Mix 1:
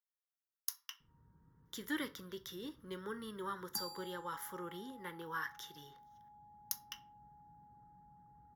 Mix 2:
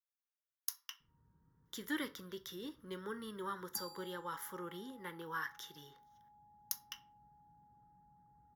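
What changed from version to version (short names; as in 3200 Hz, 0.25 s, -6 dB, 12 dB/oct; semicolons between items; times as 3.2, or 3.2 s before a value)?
background -4.5 dB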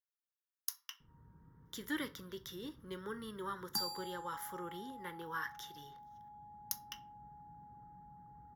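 background +10.0 dB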